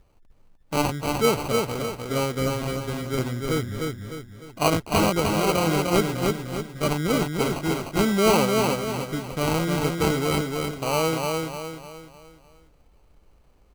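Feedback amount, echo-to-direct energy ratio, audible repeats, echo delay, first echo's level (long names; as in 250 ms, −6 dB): 42%, −2.5 dB, 5, 302 ms, −3.5 dB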